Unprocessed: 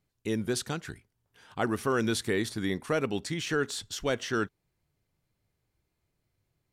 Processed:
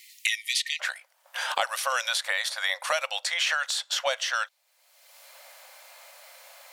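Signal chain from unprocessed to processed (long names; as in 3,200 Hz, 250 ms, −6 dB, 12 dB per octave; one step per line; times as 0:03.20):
linear-phase brick-wall high-pass 1,800 Hz, from 0:00.79 510 Hz
dynamic equaliser 3,900 Hz, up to +4 dB, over −50 dBFS, Q 0.94
multiband upward and downward compressor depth 100%
level +5.5 dB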